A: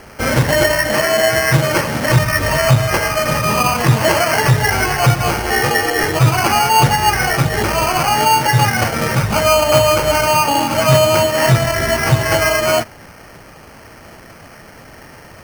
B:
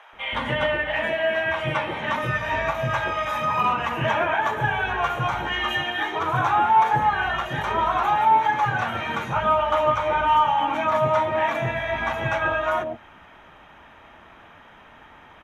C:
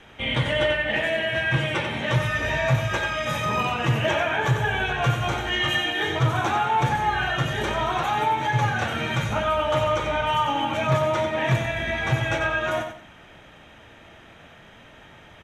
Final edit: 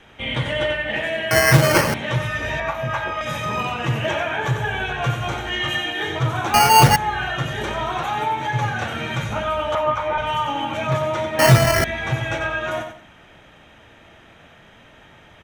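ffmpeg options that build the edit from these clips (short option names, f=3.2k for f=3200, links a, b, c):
-filter_complex "[0:a]asplit=3[a][b][c];[1:a]asplit=2[d][e];[2:a]asplit=6[f][g][h][i][j][k];[f]atrim=end=1.312[l];[a]atrim=start=1.308:end=1.942[m];[g]atrim=start=1.938:end=2.602[n];[d]atrim=start=2.598:end=3.212[o];[h]atrim=start=3.208:end=6.542[p];[b]atrim=start=6.538:end=6.962[q];[i]atrim=start=6.958:end=9.752[r];[e]atrim=start=9.748:end=10.182[s];[j]atrim=start=10.178:end=11.392[t];[c]atrim=start=11.388:end=11.842[u];[k]atrim=start=11.838[v];[l][m]acrossfade=d=0.004:c1=hsin:c2=hsin[w];[w][n]acrossfade=d=0.004:c1=hsin:c2=hsin[x];[x][o]acrossfade=d=0.004:c1=hsin:c2=hsin[y];[y][p]acrossfade=d=0.004:c1=hsin:c2=hsin[z];[z][q]acrossfade=d=0.004:c1=hsin:c2=hsin[aa];[aa][r]acrossfade=d=0.004:c1=hsin:c2=hsin[ab];[ab][s]acrossfade=d=0.004:c1=hsin:c2=hsin[ac];[ac][t]acrossfade=d=0.004:c1=hsin:c2=hsin[ad];[ad][u]acrossfade=d=0.004:c1=hsin:c2=hsin[ae];[ae][v]acrossfade=d=0.004:c1=hsin:c2=hsin"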